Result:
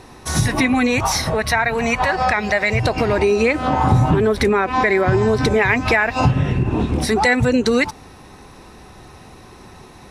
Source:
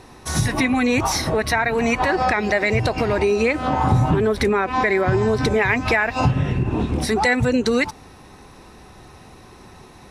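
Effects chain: 0.86–2.82 bell 320 Hz -8 dB -> -14.5 dB 0.64 oct; gain +2.5 dB

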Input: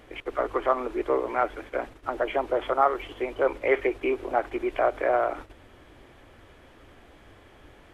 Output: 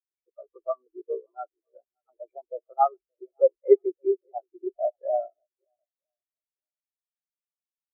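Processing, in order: on a send: swung echo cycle 0.957 s, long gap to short 1.5:1, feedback 39%, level -13 dB; on the sum: spectral expander 4:1; gain +2.5 dB

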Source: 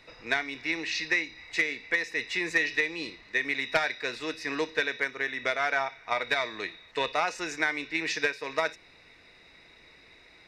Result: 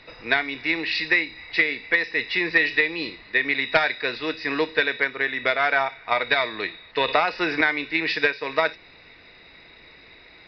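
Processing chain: downsampling 11025 Hz; 7.08–7.61 three-band squash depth 100%; gain +6.5 dB

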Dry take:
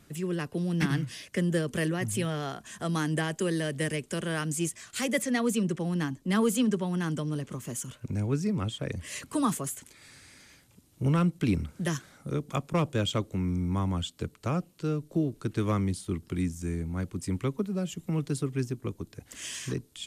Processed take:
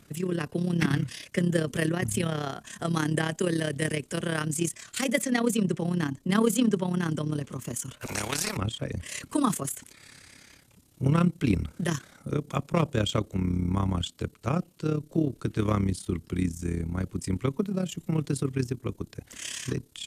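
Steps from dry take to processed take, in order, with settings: AM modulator 34 Hz, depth 55%; 8.01–8.57 spectral compressor 4:1; gain +5 dB

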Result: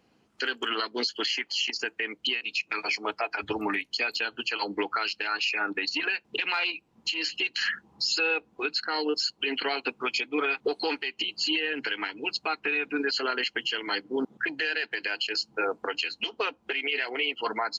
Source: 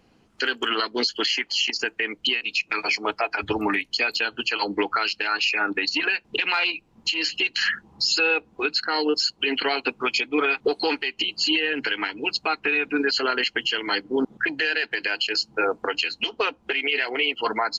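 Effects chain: HPF 130 Hz 6 dB/oct; gain -5 dB

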